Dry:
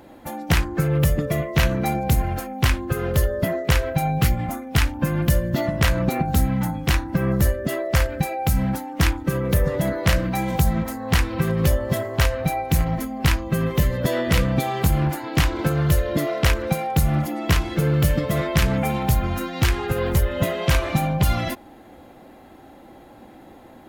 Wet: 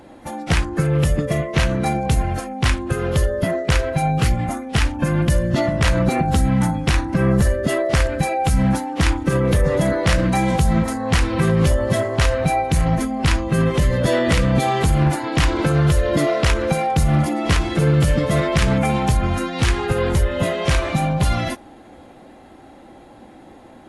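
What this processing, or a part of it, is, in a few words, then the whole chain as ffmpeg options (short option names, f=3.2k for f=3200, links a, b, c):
low-bitrate web radio: -af "dynaudnorm=f=860:g=13:m=6dB,alimiter=limit=-11dB:level=0:latency=1:release=35,volume=2.5dB" -ar 24000 -c:a aac -b:a 48k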